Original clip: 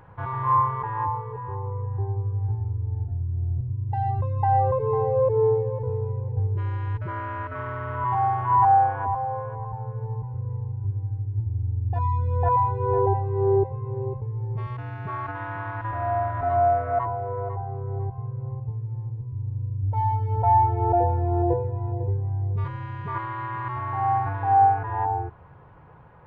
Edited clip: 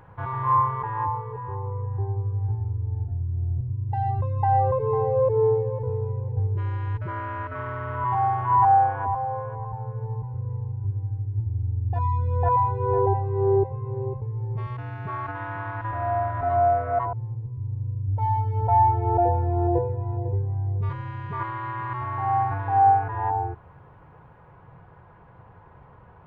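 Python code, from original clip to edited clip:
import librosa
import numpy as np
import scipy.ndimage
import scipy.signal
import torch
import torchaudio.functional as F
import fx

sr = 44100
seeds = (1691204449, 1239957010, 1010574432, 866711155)

y = fx.edit(x, sr, fx.cut(start_s=17.13, length_s=1.75), tone=tone)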